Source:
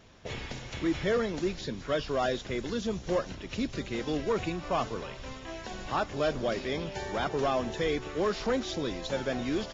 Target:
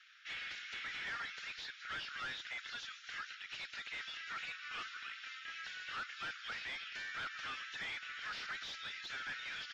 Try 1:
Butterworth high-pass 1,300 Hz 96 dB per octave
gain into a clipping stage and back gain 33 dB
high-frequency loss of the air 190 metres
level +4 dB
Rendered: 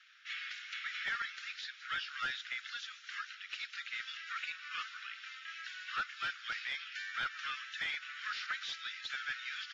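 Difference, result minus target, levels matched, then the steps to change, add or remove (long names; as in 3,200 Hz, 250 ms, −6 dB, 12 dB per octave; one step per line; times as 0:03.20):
gain into a clipping stage and back: distortion −10 dB
change: gain into a clipping stage and back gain 41.5 dB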